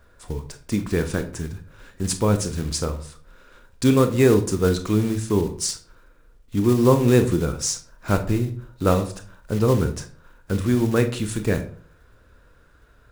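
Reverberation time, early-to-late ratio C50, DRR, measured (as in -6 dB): 0.45 s, 12.0 dB, 7.5 dB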